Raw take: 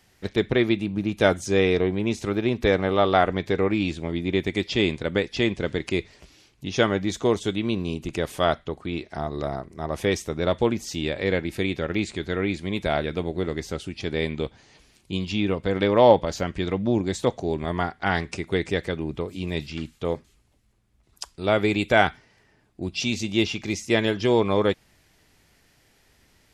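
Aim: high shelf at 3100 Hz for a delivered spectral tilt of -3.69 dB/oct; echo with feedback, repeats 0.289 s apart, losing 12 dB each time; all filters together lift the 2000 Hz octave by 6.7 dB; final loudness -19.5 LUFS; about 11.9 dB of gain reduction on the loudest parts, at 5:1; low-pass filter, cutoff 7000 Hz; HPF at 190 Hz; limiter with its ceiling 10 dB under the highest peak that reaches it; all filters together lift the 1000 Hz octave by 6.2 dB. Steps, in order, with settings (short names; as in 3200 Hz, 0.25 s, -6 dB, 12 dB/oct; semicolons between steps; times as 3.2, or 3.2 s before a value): HPF 190 Hz; LPF 7000 Hz; bell 1000 Hz +7 dB; bell 2000 Hz +4 dB; high shelf 3100 Hz +6.5 dB; compressor 5:1, threshold -20 dBFS; limiter -16 dBFS; feedback echo 0.289 s, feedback 25%, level -12 dB; gain +10 dB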